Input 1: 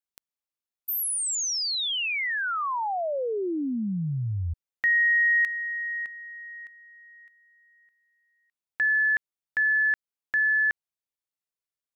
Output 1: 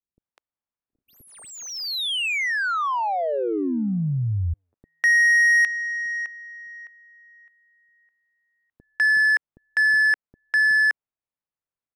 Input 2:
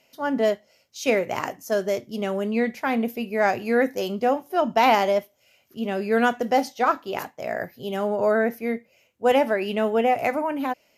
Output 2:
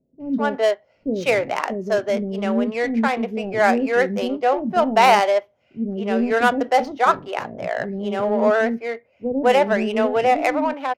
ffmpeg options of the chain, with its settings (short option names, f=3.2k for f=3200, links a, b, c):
-filter_complex "[0:a]adynamicsmooth=sensitivity=3:basefreq=1.8k,acrossover=split=390[a][b];[b]adelay=200[c];[a][c]amix=inputs=2:normalize=0,volume=5dB"